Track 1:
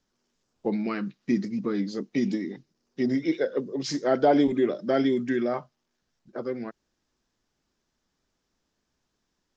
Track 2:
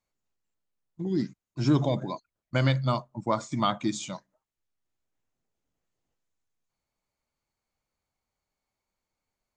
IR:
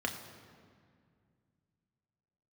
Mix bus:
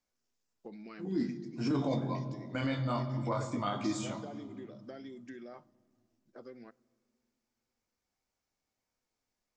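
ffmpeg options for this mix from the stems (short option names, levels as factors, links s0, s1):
-filter_complex "[0:a]highshelf=f=4200:g=11.5,acompressor=threshold=0.0447:ratio=10,volume=0.141,asplit=2[s0][s1];[s1]volume=0.0794[s2];[1:a]flanger=delay=18:depth=4.6:speed=0.22,volume=0.501,asplit=2[s3][s4];[s4]volume=0.668[s5];[2:a]atrim=start_sample=2205[s6];[s2][s5]amix=inputs=2:normalize=0[s7];[s7][s6]afir=irnorm=-1:irlink=0[s8];[s0][s3][s8]amix=inputs=3:normalize=0,alimiter=limit=0.0668:level=0:latency=1:release=13"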